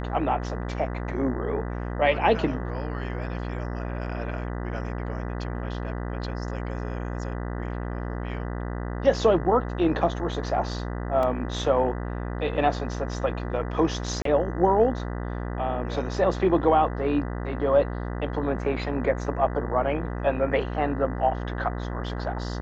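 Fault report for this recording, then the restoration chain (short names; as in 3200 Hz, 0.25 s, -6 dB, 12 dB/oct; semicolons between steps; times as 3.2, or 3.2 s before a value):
buzz 60 Hz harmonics 33 -31 dBFS
11.23 gap 2.1 ms
14.22–14.25 gap 33 ms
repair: de-hum 60 Hz, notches 33; interpolate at 11.23, 2.1 ms; interpolate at 14.22, 33 ms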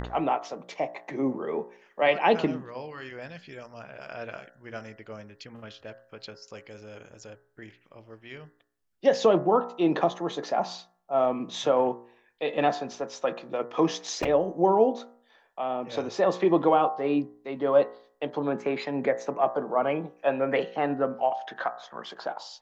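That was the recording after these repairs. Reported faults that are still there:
none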